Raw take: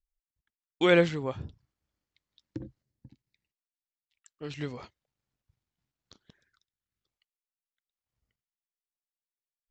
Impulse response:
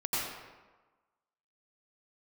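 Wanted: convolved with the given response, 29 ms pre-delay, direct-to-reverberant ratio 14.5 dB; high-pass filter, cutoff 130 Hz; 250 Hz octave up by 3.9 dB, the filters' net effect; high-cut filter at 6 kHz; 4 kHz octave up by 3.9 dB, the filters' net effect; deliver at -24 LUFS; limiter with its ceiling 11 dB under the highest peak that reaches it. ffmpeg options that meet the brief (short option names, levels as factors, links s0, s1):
-filter_complex "[0:a]highpass=130,lowpass=6000,equalizer=f=250:t=o:g=7.5,equalizer=f=4000:t=o:g=5.5,alimiter=limit=0.126:level=0:latency=1,asplit=2[s0][s1];[1:a]atrim=start_sample=2205,adelay=29[s2];[s1][s2]afir=irnorm=-1:irlink=0,volume=0.0794[s3];[s0][s3]amix=inputs=2:normalize=0,volume=2.82"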